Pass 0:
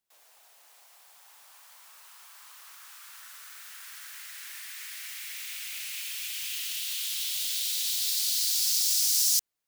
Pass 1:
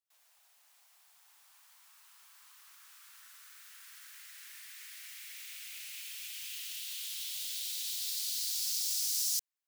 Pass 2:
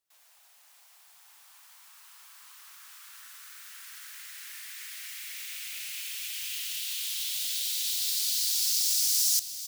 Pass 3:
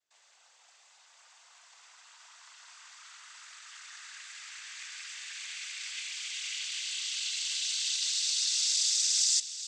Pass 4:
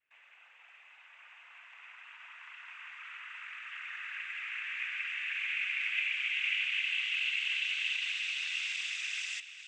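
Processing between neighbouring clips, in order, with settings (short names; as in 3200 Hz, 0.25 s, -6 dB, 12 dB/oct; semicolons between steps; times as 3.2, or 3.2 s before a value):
Bessel high-pass 1000 Hz, order 2; gain -8 dB
frequency-shifting echo 0.444 s, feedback 63%, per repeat +33 Hz, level -14 dB; gain +7 dB
noise vocoder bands 16; gain +2 dB
EQ curve 340 Hz 0 dB, 700 Hz -3 dB, 2600 Hz +13 dB, 4400 Hz -21 dB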